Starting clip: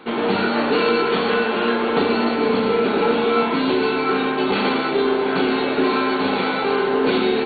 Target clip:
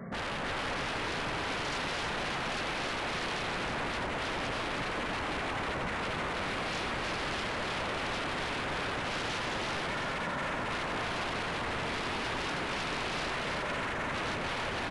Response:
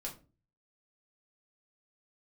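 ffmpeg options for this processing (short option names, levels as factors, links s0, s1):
-af "equalizer=f=200:t=o:w=0.33:g=-10,equalizer=f=400:t=o:w=0.33:g=11,equalizer=f=630:t=o:w=0.33:g=-9,equalizer=f=1600:t=o:w=0.33:g=-9,alimiter=limit=0.224:level=0:latency=1:release=304,aeval=exprs='0.0282*(abs(mod(val(0)/0.0282+3,4)-2)-1)':c=same,aecho=1:1:158:0.631,asetrate=22050,aresample=44100"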